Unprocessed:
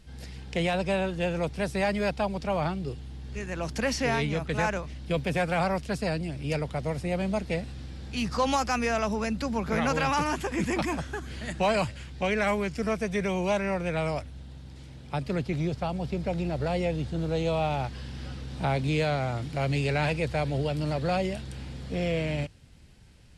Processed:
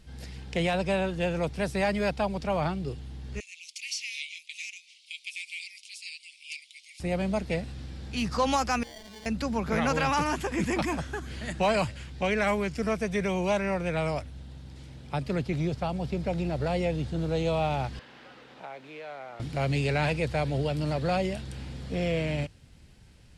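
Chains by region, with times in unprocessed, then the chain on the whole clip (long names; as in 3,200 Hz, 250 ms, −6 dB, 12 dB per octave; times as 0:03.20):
0:03.40–0:07.00: Butterworth high-pass 2,200 Hz 96 dB per octave + bad sample-rate conversion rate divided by 2×, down none, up filtered
0:08.83–0:09.26: output level in coarse steps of 24 dB + sample-rate reduction 1,300 Hz + parametric band 4,300 Hz +12.5 dB 1.7 octaves
0:17.99–0:19.40: downward compressor 8 to 1, threshold −33 dBFS + noise that follows the level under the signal 14 dB + band-pass filter 460–2,600 Hz
whole clip: no processing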